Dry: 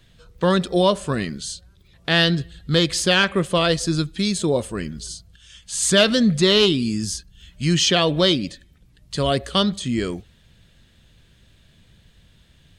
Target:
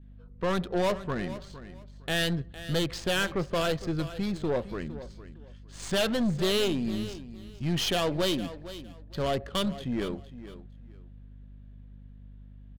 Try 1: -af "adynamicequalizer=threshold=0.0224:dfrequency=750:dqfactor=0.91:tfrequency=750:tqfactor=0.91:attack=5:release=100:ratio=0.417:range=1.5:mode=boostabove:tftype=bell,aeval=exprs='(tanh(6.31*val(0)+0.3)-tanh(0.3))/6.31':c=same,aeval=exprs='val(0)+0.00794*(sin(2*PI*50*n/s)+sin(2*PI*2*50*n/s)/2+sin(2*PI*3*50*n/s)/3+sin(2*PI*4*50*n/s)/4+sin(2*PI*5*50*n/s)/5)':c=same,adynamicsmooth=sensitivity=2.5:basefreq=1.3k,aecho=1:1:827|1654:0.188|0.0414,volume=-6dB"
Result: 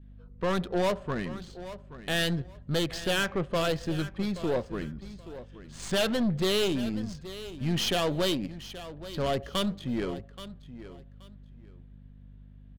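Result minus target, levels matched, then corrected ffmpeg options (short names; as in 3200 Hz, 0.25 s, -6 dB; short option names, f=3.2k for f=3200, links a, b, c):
echo 0.368 s late
-af "adynamicequalizer=threshold=0.0224:dfrequency=750:dqfactor=0.91:tfrequency=750:tqfactor=0.91:attack=5:release=100:ratio=0.417:range=1.5:mode=boostabove:tftype=bell,aeval=exprs='(tanh(6.31*val(0)+0.3)-tanh(0.3))/6.31':c=same,aeval=exprs='val(0)+0.00794*(sin(2*PI*50*n/s)+sin(2*PI*2*50*n/s)/2+sin(2*PI*3*50*n/s)/3+sin(2*PI*4*50*n/s)/4+sin(2*PI*5*50*n/s)/5)':c=same,adynamicsmooth=sensitivity=2.5:basefreq=1.3k,aecho=1:1:459|918:0.188|0.0414,volume=-6dB"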